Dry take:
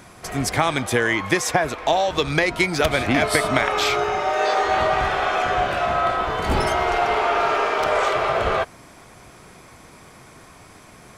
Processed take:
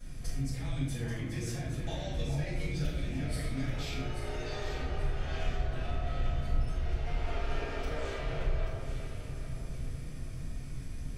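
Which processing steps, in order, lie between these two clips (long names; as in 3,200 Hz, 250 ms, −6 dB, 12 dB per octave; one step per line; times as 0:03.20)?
guitar amp tone stack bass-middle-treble 10-0-1
downward compressor 6 to 1, threshold −52 dBFS, peak gain reduction 23.5 dB
on a send: delay that swaps between a low-pass and a high-pass 417 ms, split 1,500 Hz, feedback 59%, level −4 dB
on the sum: rectangular room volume 180 cubic metres, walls mixed, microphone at 5.9 metres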